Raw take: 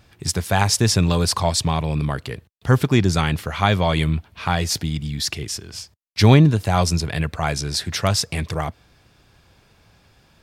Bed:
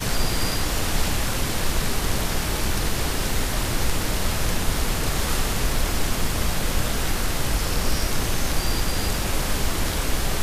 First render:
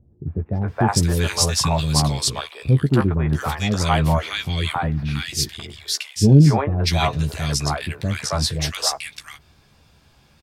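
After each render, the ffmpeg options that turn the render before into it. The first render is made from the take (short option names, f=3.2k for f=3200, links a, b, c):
-filter_complex "[0:a]asplit=2[a][b];[b]adelay=14,volume=-7dB[c];[a][c]amix=inputs=2:normalize=0,acrossover=split=480|1700[d][e][f];[e]adelay=270[g];[f]adelay=680[h];[d][g][h]amix=inputs=3:normalize=0"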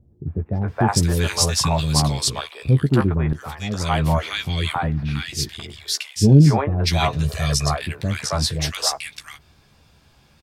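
-filter_complex "[0:a]asettb=1/sr,asplit=3[a][b][c];[a]atrim=end=4.924[d];[b]atrim=start=4.92:end=5.51,asetpts=PTS-STARTPTS,afade=t=in:d=0.004:c=qsin,afade=t=out:st=0.586:d=0.004:c=qsin,highshelf=f=4.4k:g=-5[e];[c]atrim=start=5.506[f];[d][e]acrossfade=d=0.004:c1=hsin:c2=qsin[g];[g][f]acrossfade=d=0.004:c1=qsin:c2=hsin,asettb=1/sr,asplit=3[h][i][j];[h]atrim=end=7.254[k];[i]atrim=start=7.25:end=7.76,asetpts=PTS-STARTPTS,afade=t=in:d=0.004:c=qsin,afade=t=out:st=0.506:d=0.004:c=qsin,aecho=1:1:1.7:0.65,atrim=end_sample=22491[l];[j]atrim=start=7.756[m];[k][l]acrossfade=d=0.004:c1=hsin:c2=qsin[n];[n][m]acrossfade=d=0.004:c1=qsin:c2=hsin,asplit=2[o][p];[o]atrim=end=3.33,asetpts=PTS-STARTPTS,afade=t=out:st=3.326:d=0.004:c=hsin:silence=0.237137[q];[p]atrim=start=3.33,asetpts=PTS-STARTPTS,afade=t=in:d=0.87:silence=0.237137[r];[q][r]concat=n=2:v=0:a=1"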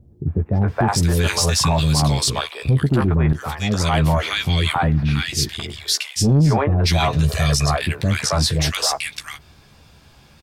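-af "acontrast=45,alimiter=limit=-9.5dB:level=0:latency=1:release=25"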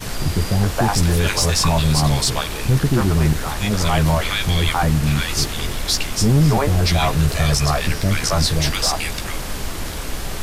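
-filter_complex "[1:a]volume=-3dB[a];[0:a][a]amix=inputs=2:normalize=0"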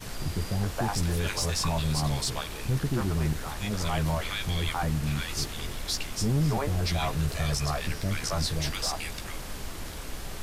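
-af "volume=-11dB"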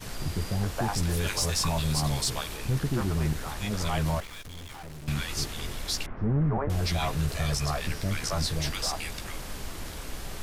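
-filter_complex "[0:a]asettb=1/sr,asplit=3[a][b][c];[a]atrim=end=1.094[d];[b]atrim=start=1.09:end=2.56,asetpts=PTS-STARTPTS,afade=t=in:d=0.004:c=qsin,afade=t=out:st=1.466:d=0.004:c=qsin,highshelf=f=5.7k:g=4[e];[c]atrim=start=2.556[f];[d][e]acrossfade=d=0.004:c1=hsin:c2=qsin[g];[g][f]acrossfade=d=0.004:c1=qsin:c2=hsin,asettb=1/sr,asplit=3[h][i][j];[h]atrim=end=4.204[k];[i]atrim=start=4.2:end=5.08,asetpts=PTS-STARTPTS,afade=t=in:d=0.004:c=qsin,afade=t=out:st=0.876:d=0.004:c=qsin,aeval=exprs='(tanh(112*val(0)+0.65)-tanh(0.65))/112':c=same[l];[j]atrim=start=5.076[m];[k][l]acrossfade=d=0.004:c1=hsin:c2=qsin[n];[n][m]acrossfade=d=0.004:c1=qsin:c2=hsin,asettb=1/sr,asplit=3[o][p][q];[o]atrim=end=6.064[r];[p]atrim=start=6.06:end=6.7,asetpts=PTS-STARTPTS,afade=t=in:d=0.004:c=qsin,afade=t=out:st=0.636:d=0.004:c=qsin,lowpass=f=1.7k:w=0.5412,lowpass=f=1.7k:w=1.3066[s];[q]atrim=start=6.696[t];[r][s]acrossfade=d=0.004:c1=hsin:c2=qsin[u];[u][t]acrossfade=d=0.004:c1=qsin:c2=hsin"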